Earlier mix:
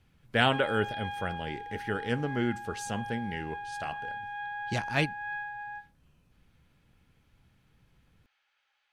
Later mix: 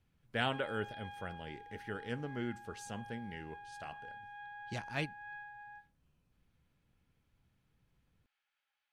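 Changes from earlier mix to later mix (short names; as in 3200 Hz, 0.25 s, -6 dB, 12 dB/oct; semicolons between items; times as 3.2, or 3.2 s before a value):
speech -9.5 dB; background -11.5 dB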